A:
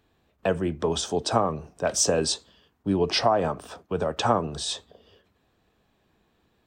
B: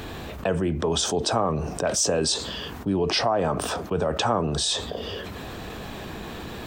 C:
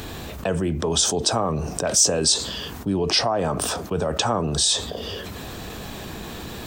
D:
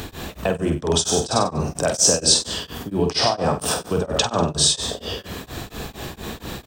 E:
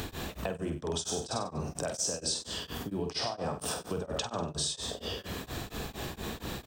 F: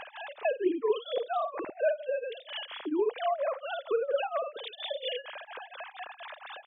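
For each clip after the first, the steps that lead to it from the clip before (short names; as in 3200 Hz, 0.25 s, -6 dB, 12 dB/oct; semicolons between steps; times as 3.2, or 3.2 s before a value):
fast leveller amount 70%; gain -3.5 dB
tone controls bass +2 dB, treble +8 dB
doubler 47 ms -6 dB; feedback echo 96 ms, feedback 30%, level -8.5 dB; beating tremolo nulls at 4.3 Hz; gain +3 dB
compressor 3:1, threshold -30 dBFS, peak gain reduction 14 dB; gain -4 dB
sine-wave speech; gain +3 dB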